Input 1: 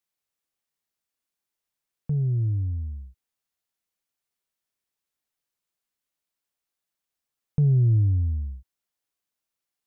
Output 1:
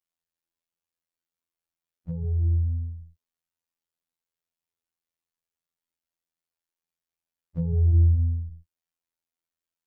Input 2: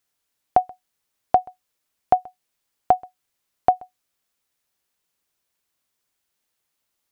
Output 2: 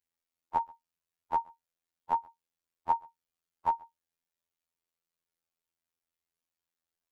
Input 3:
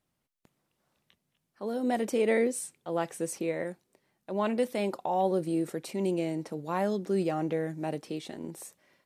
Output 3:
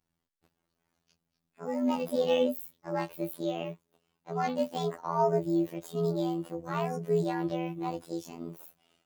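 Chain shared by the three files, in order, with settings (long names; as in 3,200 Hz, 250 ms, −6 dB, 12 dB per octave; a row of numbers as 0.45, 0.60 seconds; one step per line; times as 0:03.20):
partials spread apart or drawn together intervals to 119%
phases set to zero 84 Hz
normalise the peak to −12 dBFS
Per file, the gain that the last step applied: +3.0, −4.5, +3.0 decibels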